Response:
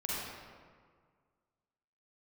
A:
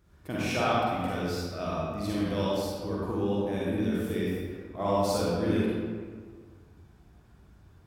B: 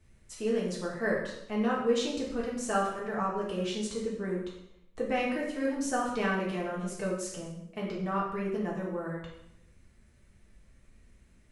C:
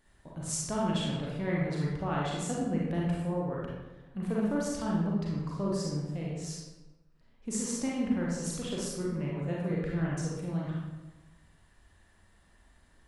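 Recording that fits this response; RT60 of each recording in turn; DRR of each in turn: A; 1.8 s, 0.80 s, 1.1 s; -7.0 dB, -4.5 dB, -4.5 dB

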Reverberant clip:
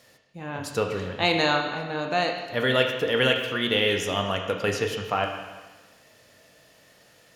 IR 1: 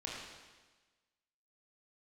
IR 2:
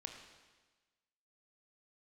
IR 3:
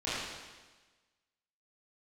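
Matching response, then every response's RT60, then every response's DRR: 2; 1.3 s, 1.3 s, 1.3 s; -5.0 dB, 3.0 dB, -12.5 dB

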